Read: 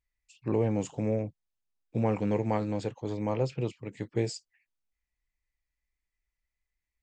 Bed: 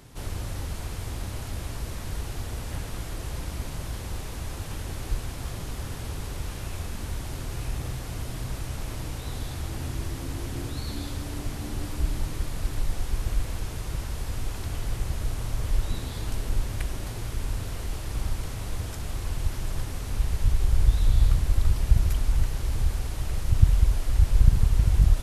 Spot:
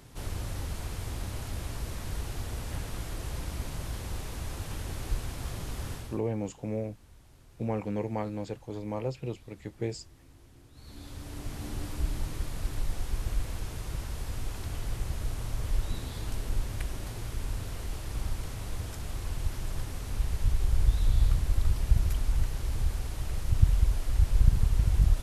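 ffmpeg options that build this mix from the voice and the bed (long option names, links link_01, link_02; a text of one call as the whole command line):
ffmpeg -i stem1.wav -i stem2.wav -filter_complex "[0:a]adelay=5650,volume=-4dB[link_01];[1:a]volume=16.5dB,afade=type=out:start_time=5.91:duration=0.3:silence=0.0944061,afade=type=in:start_time=10.72:duration=0.95:silence=0.112202[link_02];[link_01][link_02]amix=inputs=2:normalize=0" out.wav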